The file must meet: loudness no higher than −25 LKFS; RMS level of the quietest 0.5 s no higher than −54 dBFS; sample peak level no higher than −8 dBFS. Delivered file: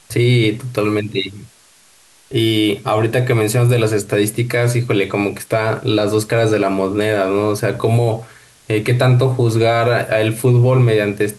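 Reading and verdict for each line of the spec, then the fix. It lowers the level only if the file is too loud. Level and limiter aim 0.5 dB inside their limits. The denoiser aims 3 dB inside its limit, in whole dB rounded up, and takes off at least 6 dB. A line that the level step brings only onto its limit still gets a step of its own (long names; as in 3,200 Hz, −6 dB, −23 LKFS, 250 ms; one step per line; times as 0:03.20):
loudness −16.0 LKFS: out of spec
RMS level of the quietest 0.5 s −49 dBFS: out of spec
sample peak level −5.0 dBFS: out of spec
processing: level −9.5 dB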